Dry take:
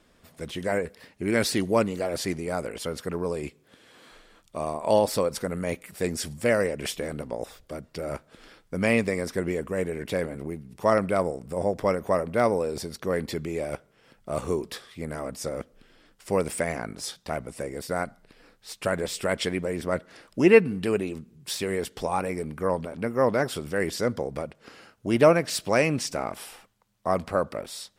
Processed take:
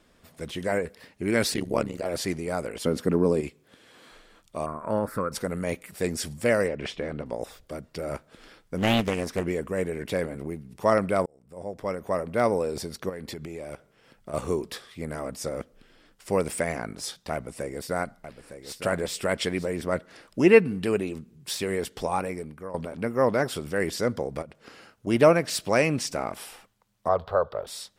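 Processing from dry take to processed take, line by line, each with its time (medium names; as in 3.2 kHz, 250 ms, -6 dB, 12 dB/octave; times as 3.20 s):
1.54–2.06 s: AM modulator 70 Hz, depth 90%
2.84–3.41 s: peaking EQ 250 Hz +11.5 dB 1.8 oct
4.66–5.32 s: FFT filter 220 Hz 0 dB, 810 Hz -10 dB, 1.4 kHz +12 dB, 3 kHz -21 dB, 6.1 kHz -21 dB, 11 kHz -9 dB
6.68–7.26 s: low-pass 3.6 kHz
8.77–9.46 s: loudspeaker Doppler distortion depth 0.72 ms
11.26–12.54 s: fade in
13.09–14.34 s: compression, threshold -33 dBFS
17.33–19.70 s: delay 909 ms -10.5 dB
22.14–22.74 s: fade out, to -16 dB
24.42–25.07 s: compression, threshold -38 dBFS
27.08–27.67 s: FFT filter 110 Hz 0 dB, 270 Hz -18 dB, 430 Hz +2 dB, 920 Hz +2 dB, 1.5 kHz -1 dB, 2.3 kHz -14 dB, 3.5 kHz +3 dB, 6.2 kHz -16 dB, 9.9 kHz -25 dB, 14 kHz -9 dB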